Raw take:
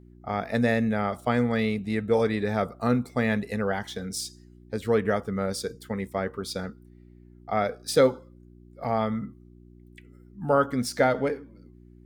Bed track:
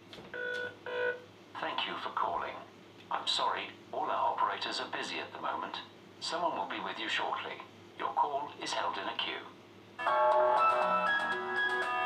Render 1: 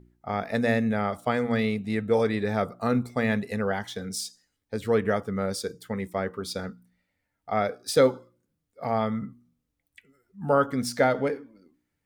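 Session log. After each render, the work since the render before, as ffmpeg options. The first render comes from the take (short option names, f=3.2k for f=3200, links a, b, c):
-af "bandreject=f=60:t=h:w=4,bandreject=f=120:t=h:w=4,bandreject=f=180:t=h:w=4,bandreject=f=240:t=h:w=4,bandreject=f=300:t=h:w=4,bandreject=f=360:t=h:w=4"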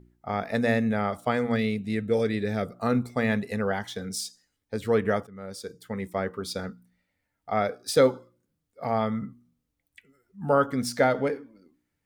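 -filter_complex "[0:a]asettb=1/sr,asplit=3[a][b][c];[a]atrim=end=1.564[d];[b]atrim=start=1.56:end=2.76,asetpts=PTS-STARTPTS,afade=t=in:d=0.004:c=qsin,afade=t=out:st=1.196:d=0.004:c=qsin,equalizer=f=970:t=o:w=0.82:g=-12[e];[c]atrim=start=2.756[f];[d][e]acrossfade=d=0.004:c1=hsin:c2=qsin[g];[g][f]acrossfade=d=0.004:c1=qsin:c2=hsin,asplit=2[h][i];[h]atrim=end=5.27,asetpts=PTS-STARTPTS,afade=t=out:st=5.266:d=0.004:c=hsin:silence=0.105925[j];[i]atrim=start=5.27,asetpts=PTS-STARTPTS,afade=t=in:d=0.85:silence=0.105925[k];[j][k]concat=n=2:v=0:a=1"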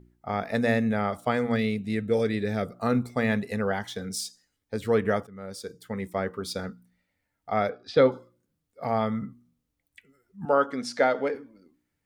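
-filter_complex "[0:a]asettb=1/sr,asplit=3[a][b][c];[a]atrim=end=7.694[d];[b]atrim=start=7.69:end=8.12,asetpts=PTS-STARTPTS,afade=t=in:d=0.004:c=qsin,afade=t=out:st=0.426:d=0.004:c=qsin,lowpass=f=3.9k:w=0.5412,lowpass=f=3.9k:w=1.3066[e];[c]atrim=start=8.116[f];[d][e]acrossfade=d=0.004:c1=hsin:c2=qsin[g];[g][f]acrossfade=d=0.004:c1=qsin:c2=hsin,asettb=1/sr,asplit=3[h][i][j];[h]atrim=end=10.454[k];[i]atrim=start=10.45:end=11.35,asetpts=PTS-STARTPTS,afade=t=in:d=0.004:c=qsin,afade=t=out:st=0.896:d=0.004:c=qsin,highpass=290,lowpass=6.2k[l];[j]atrim=start=11.346[m];[k][l]acrossfade=d=0.004:c1=hsin:c2=qsin[n];[n][m]acrossfade=d=0.004:c1=qsin:c2=hsin"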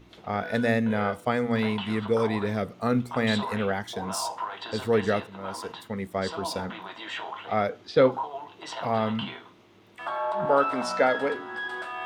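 -filter_complex "[1:a]volume=-2dB[a];[0:a][a]amix=inputs=2:normalize=0"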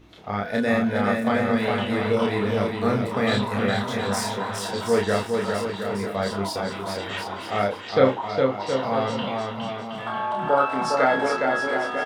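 -filter_complex "[0:a]asplit=2[a][b];[b]adelay=30,volume=-2.5dB[c];[a][c]amix=inputs=2:normalize=0,asplit=2[d][e];[e]aecho=0:1:410|717.5|948.1|1121|1251:0.631|0.398|0.251|0.158|0.1[f];[d][f]amix=inputs=2:normalize=0"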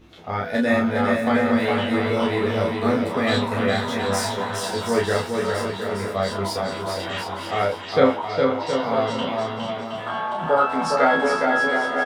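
-filter_complex "[0:a]asplit=2[a][b];[b]adelay=12,volume=-3dB[c];[a][c]amix=inputs=2:normalize=0,asplit=2[d][e];[e]aecho=0:1:491:0.266[f];[d][f]amix=inputs=2:normalize=0"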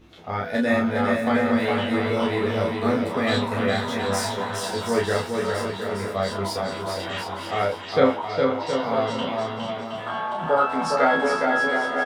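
-af "volume=-1.5dB"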